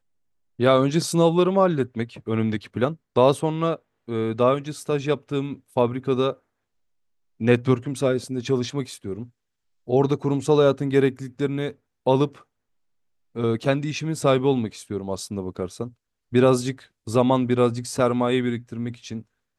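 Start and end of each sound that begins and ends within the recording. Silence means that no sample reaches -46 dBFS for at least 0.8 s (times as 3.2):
7.4–12.42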